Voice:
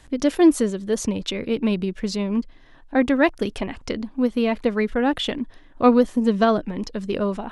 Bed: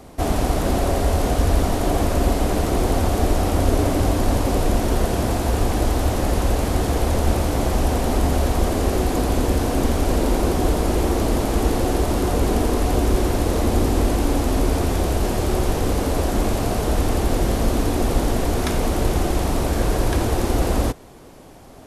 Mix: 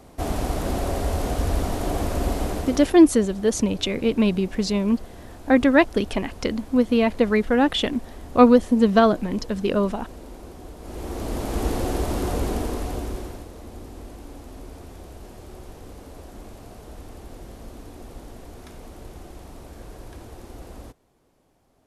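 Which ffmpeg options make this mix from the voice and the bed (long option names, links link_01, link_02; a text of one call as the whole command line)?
ffmpeg -i stem1.wav -i stem2.wav -filter_complex "[0:a]adelay=2550,volume=2dB[link_01];[1:a]volume=11dB,afade=type=out:start_time=2.44:duration=0.53:silence=0.158489,afade=type=in:start_time=10.79:duration=0.88:silence=0.149624,afade=type=out:start_time=12.32:duration=1.17:silence=0.158489[link_02];[link_01][link_02]amix=inputs=2:normalize=0" out.wav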